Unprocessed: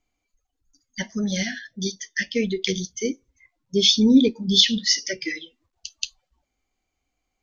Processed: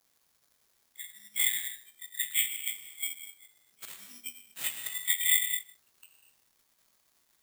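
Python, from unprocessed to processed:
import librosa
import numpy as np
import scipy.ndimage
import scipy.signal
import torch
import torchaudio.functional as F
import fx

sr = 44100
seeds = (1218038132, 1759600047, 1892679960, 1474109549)

p1 = fx.frame_reverse(x, sr, frame_ms=48.0)
p2 = scipy.signal.sosfilt(scipy.signal.ellip(4, 1.0, 40, 2000.0, 'highpass', fs=sr, output='sos'), p1)
p3 = fx.high_shelf(p2, sr, hz=4900.0, db=-3.5)
p4 = fx.auto_swell(p3, sr, attack_ms=102.0)
p5 = (np.mod(10.0 ** (24.5 / 20.0) * p4 + 1.0, 2.0) - 1.0) / 10.0 ** (24.5 / 20.0)
p6 = p4 + (p5 * librosa.db_to_amplitude(-12.0))
p7 = fx.dmg_crackle(p6, sr, seeds[0], per_s=430.0, level_db=-49.0)
p8 = 10.0 ** (-26.0 / 20.0) * np.tanh(p7 / 10.0 ** (-26.0 / 20.0))
p9 = p8 + fx.echo_single(p8, sr, ms=153, db=-15.5, dry=0)
p10 = fx.rev_gated(p9, sr, seeds[1], gate_ms=280, shape='flat', drr_db=2.0)
p11 = (np.kron(scipy.signal.resample_poly(p10, 1, 8), np.eye(8)[0]) * 8)[:len(p10)]
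p12 = fx.upward_expand(p11, sr, threshold_db=-48.0, expansion=1.5)
y = p12 * librosa.db_to_amplitude(2.5)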